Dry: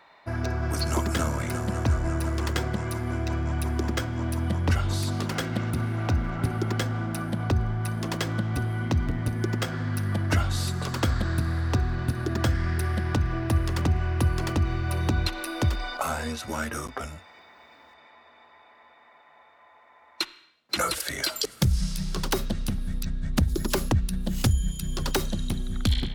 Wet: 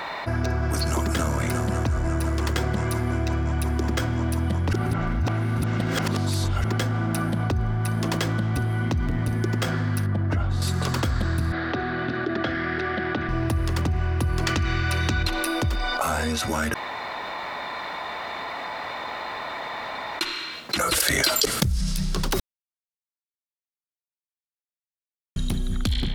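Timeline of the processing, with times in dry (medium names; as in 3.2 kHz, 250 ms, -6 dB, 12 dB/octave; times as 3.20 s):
4.73–6.64 s: reverse
10.06–10.62 s: low-pass 1.1 kHz 6 dB/octave
11.52–13.29 s: cabinet simulation 310–3600 Hz, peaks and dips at 490 Hz -4 dB, 980 Hz -10 dB, 2.6 kHz -5 dB
14.46–15.23 s: high-order bell 3.1 kHz +9 dB 2.8 oct
16.74–20.21 s: room tone
20.92–21.63 s: gain +11.5 dB
22.40–25.36 s: mute
whole clip: level flattener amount 70%; trim -8 dB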